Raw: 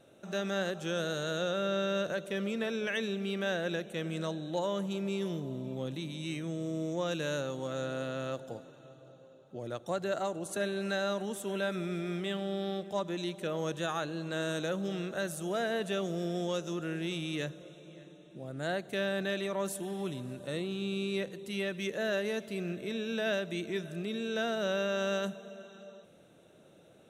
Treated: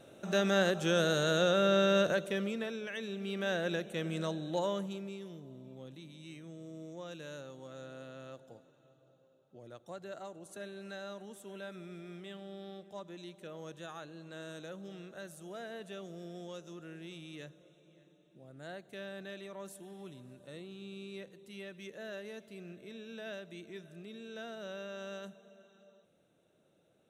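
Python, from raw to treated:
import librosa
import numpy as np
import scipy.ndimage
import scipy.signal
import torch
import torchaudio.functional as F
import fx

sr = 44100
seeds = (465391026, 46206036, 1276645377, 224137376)

y = fx.gain(x, sr, db=fx.line((2.07, 4.5), (2.9, -8.0), (3.56, -0.5), (4.68, -0.5), (5.23, -12.0)))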